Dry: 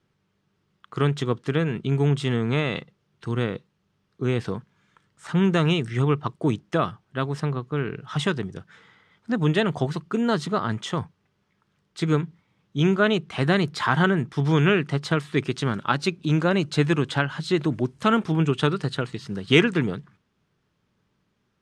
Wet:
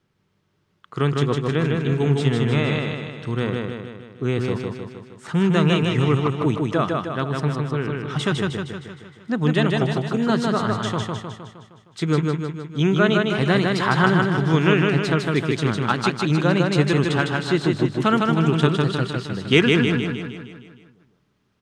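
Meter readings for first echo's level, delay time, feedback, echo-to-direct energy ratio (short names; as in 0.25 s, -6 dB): -3.0 dB, 0.155 s, 55%, -1.5 dB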